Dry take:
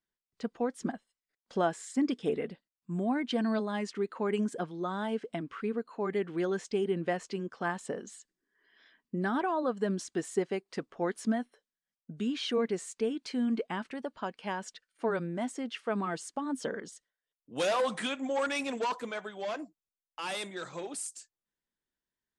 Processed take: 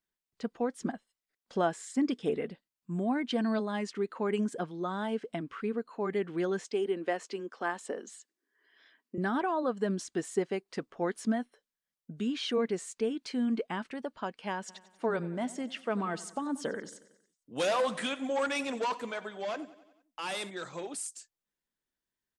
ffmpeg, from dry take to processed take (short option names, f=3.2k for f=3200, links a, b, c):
-filter_complex "[0:a]asettb=1/sr,asplit=3[a][b][c];[a]atrim=end=6.644[d];[b]atrim=start=6.64:end=9.18,asetpts=PTS-STARTPTS,afade=t=in:d=0.004:c=qsin,afade=t=out:st=2.536:d=0.004:c=qsin,highpass=f=250:w=0.5412,highpass=f=250:w=1.3066[e];[c]atrim=start=9.176[f];[d][e]acrossfade=d=0.004:c1=hsin:c2=qsin[g];[g][f]acrossfade=d=0.004:c1=qsin:c2=hsin,asplit=3[h][i][j];[h]afade=t=out:st=14.68:d=0.02[k];[i]aecho=1:1:92|184|276|368|460:0.126|0.073|0.0424|0.0246|0.0142,afade=t=in:st=14.68:d=0.02,afade=t=out:st=20.49:d=0.02[l];[j]afade=t=in:st=20.49:d=0.02[m];[k][l][m]amix=inputs=3:normalize=0"